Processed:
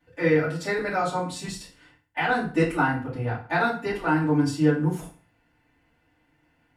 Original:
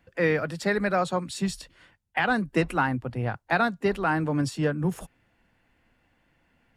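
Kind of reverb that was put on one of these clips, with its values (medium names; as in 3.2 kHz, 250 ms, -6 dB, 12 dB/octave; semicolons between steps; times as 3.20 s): FDN reverb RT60 0.42 s, low-frequency decay 1×, high-frequency decay 0.85×, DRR -10 dB; trim -10 dB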